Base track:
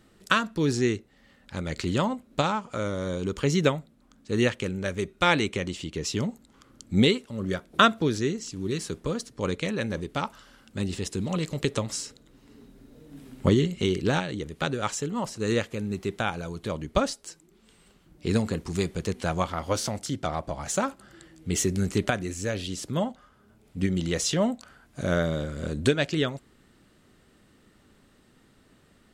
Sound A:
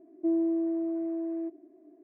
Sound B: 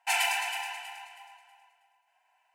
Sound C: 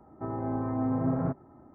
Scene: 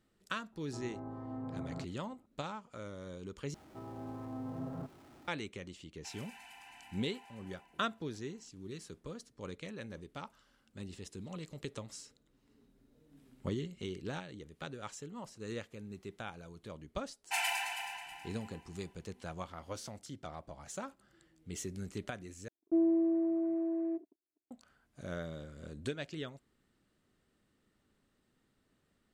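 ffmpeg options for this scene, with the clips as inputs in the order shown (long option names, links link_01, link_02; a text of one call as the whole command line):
ffmpeg -i bed.wav -i cue0.wav -i cue1.wav -i cue2.wav -filter_complex "[3:a]asplit=2[link_01][link_02];[2:a]asplit=2[link_03][link_04];[0:a]volume=-16dB[link_05];[link_02]aeval=exprs='val(0)+0.5*0.00891*sgn(val(0))':channel_layout=same[link_06];[link_03]acompressor=threshold=-51dB:ratio=6:attack=3.2:release=140:knee=1:detection=peak[link_07];[1:a]agate=range=-45dB:threshold=-49dB:ratio=16:release=100:detection=peak[link_08];[link_05]asplit=3[link_09][link_10][link_11];[link_09]atrim=end=3.544[link_12];[link_06]atrim=end=1.74,asetpts=PTS-STARTPTS,volume=-14dB[link_13];[link_10]atrim=start=5.276:end=22.484[link_14];[link_08]atrim=end=2.03,asetpts=PTS-STARTPTS,volume=-1.5dB[link_15];[link_11]atrim=start=24.506[link_16];[link_01]atrim=end=1.74,asetpts=PTS-STARTPTS,volume=-13.5dB,afade=type=in:duration=0.004:curve=hsin,afade=type=out:start_time=1.736:duration=0.004:curve=hsin,adelay=520[link_17];[link_07]atrim=end=2.54,asetpts=PTS-STARTPTS,volume=-2dB,afade=type=in:duration=0.1,afade=type=out:start_time=2.44:duration=0.1,adelay=5980[link_18];[link_04]atrim=end=2.54,asetpts=PTS-STARTPTS,volume=-6.5dB,afade=type=in:duration=0.004:curve=hsin,afade=type=out:start_time=2.536:duration=0.004:curve=hsin,adelay=17240[link_19];[link_12][link_13]acrossfade=duration=0.004:curve1=hsin:curve2=hsin[link_20];[link_20][link_14]acrossfade=duration=0.004:curve1=hsin:curve2=hsin[link_21];[link_21][link_15]acrossfade=duration=0.004:curve1=hsin:curve2=hsin[link_22];[link_22][link_16]acrossfade=duration=0.004:curve1=hsin:curve2=hsin[link_23];[link_23][link_17][link_18][link_19]amix=inputs=4:normalize=0" out.wav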